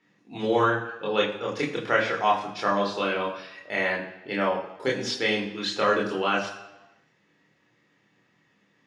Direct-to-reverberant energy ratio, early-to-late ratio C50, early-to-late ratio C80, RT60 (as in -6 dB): -2.5 dB, 7.5 dB, 10.0 dB, 1.0 s